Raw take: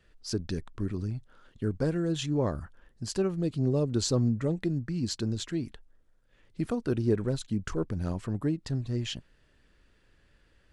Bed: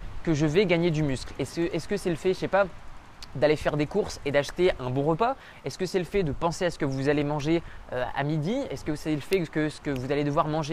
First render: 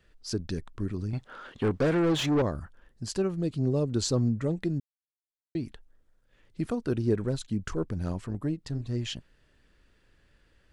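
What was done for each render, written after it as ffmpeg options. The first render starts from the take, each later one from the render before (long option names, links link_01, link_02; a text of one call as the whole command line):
ffmpeg -i in.wav -filter_complex "[0:a]asettb=1/sr,asplit=3[link_01][link_02][link_03];[link_01]atrim=end=1.134[link_04];[link_02]atrim=start=1.13:end=2.42,asetpts=PTS-STARTPTS,afade=type=in:duration=0.004:curve=qsin,afade=type=out:start_time=1.286:duration=0.004:curve=qsin,asplit=2[link_05][link_06];[link_06]highpass=frequency=720:poles=1,volume=25dB,asoftclip=type=tanh:threshold=-17dB[link_07];[link_05][link_07]amix=inputs=2:normalize=0,lowpass=frequency=2000:poles=1,volume=-6dB[link_08];[link_03]atrim=start=2.416[link_09];[link_04][link_08]acrossfade=duration=0.004:curve1=hsin:curve2=qsin[link_10];[link_10][link_09]acrossfade=duration=0.004:curve1=qsin:curve2=hsin,asplit=3[link_11][link_12][link_13];[link_11]afade=type=out:start_time=8.23:duration=0.02[link_14];[link_12]tremolo=f=150:d=0.462,afade=type=in:start_time=8.23:duration=0.02,afade=type=out:start_time=8.85:duration=0.02[link_15];[link_13]afade=type=in:start_time=8.85:duration=0.02[link_16];[link_14][link_15][link_16]amix=inputs=3:normalize=0,asplit=3[link_17][link_18][link_19];[link_17]atrim=end=4.8,asetpts=PTS-STARTPTS,afade=type=out:start_time=4.796:duration=0.004:curve=hsin[link_20];[link_18]atrim=start=4.8:end=5.55,asetpts=PTS-STARTPTS,volume=0[link_21];[link_19]atrim=start=5.55,asetpts=PTS-STARTPTS,afade=type=in:duration=0.004:curve=hsin[link_22];[link_20][link_21][link_22]concat=n=3:v=0:a=1" out.wav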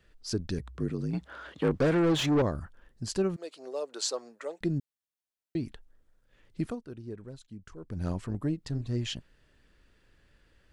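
ffmpeg -i in.wav -filter_complex "[0:a]asettb=1/sr,asplit=3[link_01][link_02][link_03];[link_01]atrim=end=0.594[link_04];[link_02]atrim=start=0.59:end=1.75,asetpts=PTS-STARTPTS,afade=type=in:duration=0.004:curve=qsin,afade=type=out:start_time=1.156:duration=0.004:curve=qsin,afreqshift=50[link_05];[link_03]atrim=start=1.746[link_06];[link_04][link_05]acrossfade=duration=0.004:curve1=hsin:curve2=qsin[link_07];[link_07][link_06]acrossfade=duration=0.004:curve1=qsin:curve2=hsin,asettb=1/sr,asplit=3[link_08][link_09][link_10];[link_08]atrim=end=3.364[link_11];[link_09]atrim=start=3.36:end=4.61,asetpts=PTS-STARTPTS,afade=type=in:duration=0.004:curve=qsin,afade=type=out:start_time=1.246:duration=0.004:curve=qsin,highpass=frequency=510:width=0.5412,highpass=frequency=510:width=1.3066[link_12];[link_10]atrim=start=4.606[link_13];[link_11][link_12]acrossfade=duration=0.004:curve1=hsin:curve2=qsin[link_14];[link_14][link_13]acrossfade=duration=0.004:curve1=qsin:curve2=hsin,asplit=3[link_15][link_16][link_17];[link_15]atrim=end=6.83,asetpts=PTS-STARTPTS,afade=type=out:start_time=6.6:duration=0.23:silence=0.177828[link_18];[link_16]atrim=start=6.83:end=7.82,asetpts=PTS-STARTPTS,volume=-15dB[link_19];[link_17]atrim=start=7.82,asetpts=PTS-STARTPTS,afade=type=in:duration=0.23:silence=0.177828[link_20];[link_18][link_19][link_20]concat=n=3:v=0:a=1" out.wav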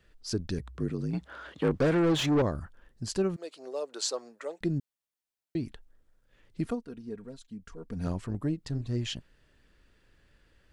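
ffmpeg -i in.wav -filter_complex "[0:a]asettb=1/sr,asplit=3[link_01][link_02][link_03];[link_01]atrim=end=6.664[link_04];[link_02]atrim=start=6.66:end=8.07,asetpts=PTS-STARTPTS,afade=type=in:duration=0.004:curve=qsin,afade=type=out:start_time=1.406:duration=0.004:curve=qsin,aecho=1:1:4.3:0.65,atrim=end_sample=62181[link_05];[link_03]atrim=start=8.066[link_06];[link_04][link_05]acrossfade=duration=0.004:curve1=hsin:curve2=qsin[link_07];[link_07][link_06]acrossfade=duration=0.004:curve1=qsin:curve2=hsin" out.wav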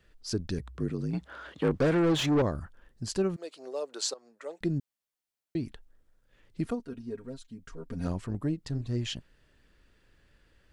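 ffmpeg -i in.wav -filter_complex "[0:a]asettb=1/sr,asplit=3[link_01][link_02][link_03];[link_01]atrim=end=6.794[link_04];[link_02]atrim=start=6.79:end=8.07,asetpts=PTS-STARTPTS,afade=type=in:duration=0.004:curve=qsin,afade=type=out:start_time=1.276:duration=0.004:curve=qsin,aecho=1:1:7.5:0.65,atrim=end_sample=56448[link_05];[link_03]atrim=start=8.066[link_06];[link_04][link_05]acrossfade=duration=0.004:curve1=hsin:curve2=qsin[link_07];[link_07][link_06]acrossfade=duration=0.004:curve1=qsin:curve2=hsin,asplit=2[link_08][link_09];[link_08]atrim=end=4.14,asetpts=PTS-STARTPTS,afade=type=out:start_time=4.136:duration=0.004:curve=hsin:silence=0.11885[link_10];[link_09]atrim=start=4.14,asetpts=PTS-STARTPTS,afade=type=in:duration=0.47:silence=0.11885[link_11];[link_10][link_11]concat=n=2:v=0:a=1" out.wav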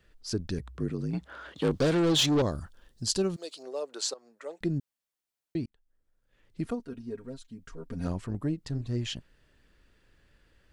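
ffmpeg -i in.wav -filter_complex "[0:a]asettb=1/sr,asplit=3[link_01][link_02][link_03];[link_01]atrim=end=1.564[link_04];[link_02]atrim=start=1.56:end=3.63,asetpts=PTS-STARTPTS,afade=type=in:duration=0.004:curve=qsin,afade=type=out:start_time=2.066:duration=0.004:curve=qsin,highshelf=frequency=2800:width_type=q:width=1.5:gain=7.5[link_05];[link_03]atrim=start=3.626[link_06];[link_04][link_05]acrossfade=duration=0.004:curve1=hsin:curve2=qsin[link_07];[link_07][link_06]acrossfade=duration=0.004:curve1=qsin:curve2=hsin,asplit=2[link_08][link_09];[link_08]atrim=end=5.66,asetpts=PTS-STARTPTS,afade=type=out:start_time=5.656:duration=0.004:curve=hsin[link_10];[link_09]atrim=start=5.66,asetpts=PTS-STARTPTS,afade=type=in:duration=1.13[link_11];[link_10][link_11]concat=n=2:v=0:a=1" out.wav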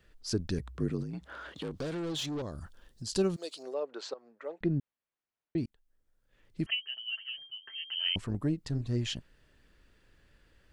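ffmpeg -i in.wav -filter_complex "[0:a]asettb=1/sr,asplit=3[link_01][link_02][link_03];[link_01]atrim=end=1.034[link_04];[link_02]atrim=start=1.03:end=3.13,asetpts=PTS-STARTPTS,afade=type=in:duration=0.004:curve=qsin,afade=type=out:start_time=2.096:duration=0.004:curve=qsin,acompressor=threshold=-39dB:ratio=2.5:attack=3.2:release=140:knee=1:detection=peak[link_05];[link_03]atrim=start=3.126[link_06];[link_04][link_05]acrossfade=duration=0.004:curve1=hsin:curve2=qsin[link_07];[link_07][link_06]acrossfade=duration=0.004:curve1=qsin:curve2=hsin,asettb=1/sr,asplit=3[link_08][link_09][link_10];[link_08]atrim=end=3.744[link_11];[link_09]atrim=start=3.74:end=5.58,asetpts=PTS-STARTPTS,afade=type=in:duration=0.004:curve=qsin,afade=type=out:start_time=1.836:duration=0.004:curve=qsin,lowpass=2500[link_12];[link_10]atrim=start=5.576[link_13];[link_11][link_12]acrossfade=duration=0.004:curve1=hsin:curve2=qsin[link_14];[link_14][link_13]acrossfade=duration=0.004:curve1=qsin:curve2=hsin,asettb=1/sr,asplit=3[link_15][link_16][link_17];[link_15]atrim=end=6.664[link_18];[link_16]atrim=start=6.66:end=8.16,asetpts=PTS-STARTPTS,afade=type=in:duration=0.004:curve=qsin,afade=type=out:start_time=1.496:duration=0.004:curve=qsin,lowpass=frequency=2700:width_type=q:width=0.5098,lowpass=frequency=2700:width_type=q:width=0.6013,lowpass=frequency=2700:width_type=q:width=0.9,lowpass=frequency=2700:width_type=q:width=2.563,afreqshift=-3200[link_19];[link_17]atrim=start=8.156[link_20];[link_18][link_19]acrossfade=duration=0.004:curve1=hsin:curve2=qsin[link_21];[link_21][link_20]acrossfade=duration=0.004:curve1=qsin:curve2=hsin" out.wav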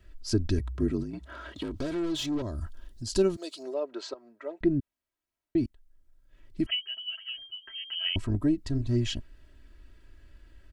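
ffmpeg -i in.wav -af "lowshelf=frequency=210:gain=9.5,aecho=1:1:3.1:0.69" out.wav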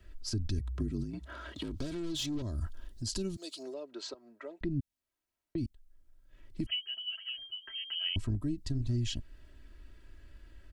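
ffmpeg -i in.wav -filter_complex "[0:a]acrossover=split=240|3000[link_01][link_02][link_03];[link_02]acompressor=threshold=-44dB:ratio=4[link_04];[link_01][link_04][link_03]amix=inputs=3:normalize=0,alimiter=level_in=0.5dB:limit=-24dB:level=0:latency=1:release=176,volume=-0.5dB" out.wav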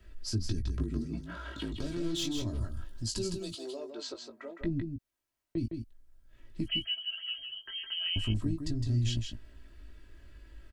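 ffmpeg -i in.wav -filter_complex "[0:a]asplit=2[link_01][link_02];[link_02]adelay=18,volume=-6dB[link_03];[link_01][link_03]amix=inputs=2:normalize=0,asplit=2[link_04][link_05];[link_05]aecho=0:1:161:0.501[link_06];[link_04][link_06]amix=inputs=2:normalize=0" out.wav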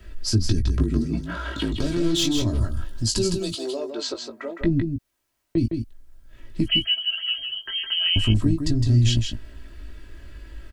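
ffmpeg -i in.wav -af "volume=11.5dB" out.wav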